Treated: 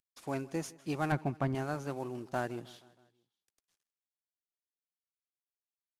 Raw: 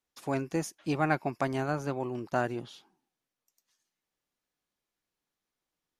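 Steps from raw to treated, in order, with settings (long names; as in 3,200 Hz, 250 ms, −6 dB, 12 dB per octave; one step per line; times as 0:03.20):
variable-slope delta modulation 64 kbit/s
0:01.12–0:01.55: bass and treble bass +10 dB, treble −11 dB
repeating echo 158 ms, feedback 58%, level −22 dB
level −5 dB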